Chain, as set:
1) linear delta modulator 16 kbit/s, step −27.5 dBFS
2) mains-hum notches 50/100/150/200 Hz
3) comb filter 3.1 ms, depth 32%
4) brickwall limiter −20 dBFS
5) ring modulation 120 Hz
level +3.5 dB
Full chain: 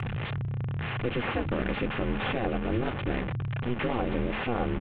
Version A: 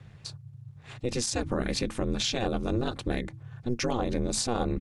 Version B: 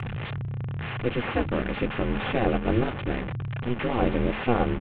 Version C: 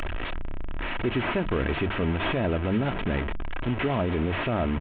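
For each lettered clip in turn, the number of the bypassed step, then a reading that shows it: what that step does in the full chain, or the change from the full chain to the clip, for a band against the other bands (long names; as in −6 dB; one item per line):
1, 4 kHz band +9.0 dB
4, average gain reduction 1.5 dB
5, change in momentary loudness spread +6 LU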